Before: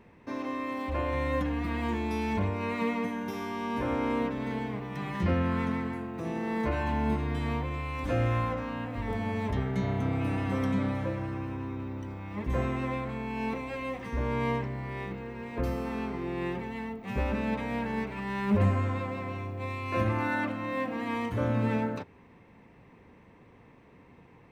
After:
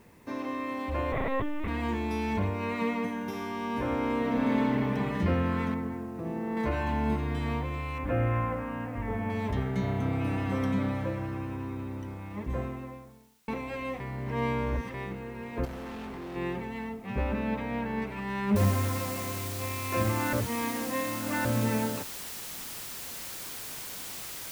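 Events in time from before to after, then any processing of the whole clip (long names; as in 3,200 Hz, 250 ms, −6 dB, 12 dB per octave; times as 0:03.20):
0:01.12–0:01.68: linear-prediction vocoder at 8 kHz pitch kept
0:04.20–0:04.92: thrown reverb, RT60 2.4 s, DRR −4.5 dB
0:05.74–0:06.57: low-pass filter 1,000 Hz 6 dB per octave
0:07.98–0:09.30: low-pass filter 2,500 Hz 24 dB per octave
0:12.00–0:13.48: fade out and dull
0:14.00–0:14.94: reverse
0:15.65–0:16.36: hard clipping −37.5 dBFS
0:17.02–0:18.02: high-frequency loss of the air 120 metres
0:18.56: noise floor change −68 dB −40 dB
0:20.33–0:21.45: reverse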